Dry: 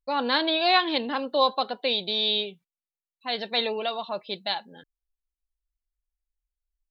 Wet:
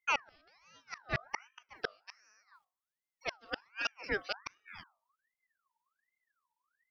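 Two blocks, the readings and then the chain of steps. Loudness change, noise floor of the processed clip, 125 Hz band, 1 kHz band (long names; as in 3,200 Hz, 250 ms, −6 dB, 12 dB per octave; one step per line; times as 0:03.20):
−13.5 dB, below −85 dBFS, can't be measured, −16.0 dB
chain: gate with flip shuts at −18 dBFS, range −40 dB
dynamic equaliser 2,000 Hz, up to −4 dB, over −49 dBFS, Q 0.85
mains-hum notches 50/100/150/200/250/300/350/400 Hz
ring modulator whose carrier an LFO sweeps 1,500 Hz, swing 40%, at 1.3 Hz
level +1.5 dB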